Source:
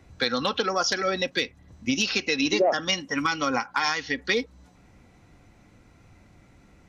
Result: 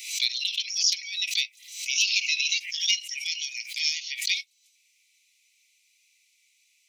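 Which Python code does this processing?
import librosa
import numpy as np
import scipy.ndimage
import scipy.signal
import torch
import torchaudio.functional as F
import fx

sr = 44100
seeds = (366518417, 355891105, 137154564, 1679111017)

y = scipy.signal.sosfilt(scipy.signal.butter(16, 2200.0, 'highpass', fs=sr, output='sos'), x)
y = fx.high_shelf(y, sr, hz=5500.0, db=9.0)
y = fx.pre_swell(y, sr, db_per_s=85.0)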